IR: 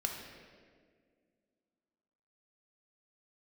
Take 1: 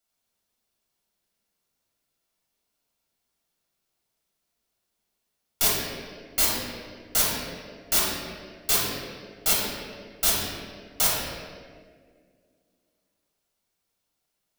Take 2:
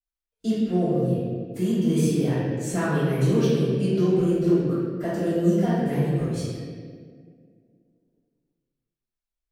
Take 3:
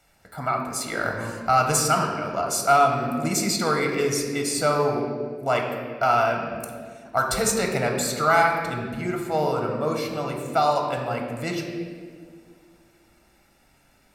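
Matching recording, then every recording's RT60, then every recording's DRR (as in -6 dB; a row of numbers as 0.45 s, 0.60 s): 3; 1.9 s, 1.9 s, 1.9 s; -6.0 dB, -13.5 dB, 1.0 dB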